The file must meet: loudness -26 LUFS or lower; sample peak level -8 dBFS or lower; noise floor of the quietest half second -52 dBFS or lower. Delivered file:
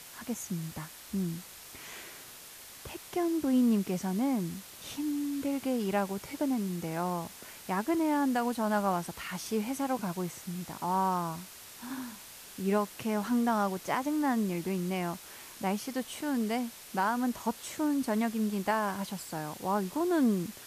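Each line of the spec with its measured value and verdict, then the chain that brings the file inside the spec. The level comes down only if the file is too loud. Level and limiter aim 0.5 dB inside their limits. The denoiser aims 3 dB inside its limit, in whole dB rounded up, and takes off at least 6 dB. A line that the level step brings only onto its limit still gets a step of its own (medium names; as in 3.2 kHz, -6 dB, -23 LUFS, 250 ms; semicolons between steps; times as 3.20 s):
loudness -32.0 LUFS: pass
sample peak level -17.5 dBFS: pass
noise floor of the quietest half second -49 dBFS: fail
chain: noise reduction 6 dB, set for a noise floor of -49 dBFS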